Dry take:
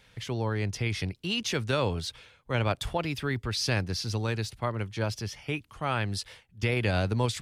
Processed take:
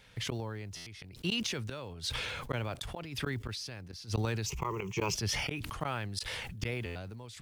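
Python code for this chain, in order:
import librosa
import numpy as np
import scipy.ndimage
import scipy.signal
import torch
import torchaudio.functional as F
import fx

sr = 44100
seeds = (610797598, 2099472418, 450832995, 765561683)

y = fx.block_float(x, sr, bits=7)
y = fx.ripple_eq(y, sr, per_octave=0.75, db=17, at=(4.46, 5.15))
y = fx.gate_flip(y, sr, shuts_db=-22.0, range_db=-28)
y = fx.buffer_glitch(y, sr, at_s=(0.76, 6.85), block=512, repeats=8)
y = fx.sustainer(y, sr, db_per_s=22.0)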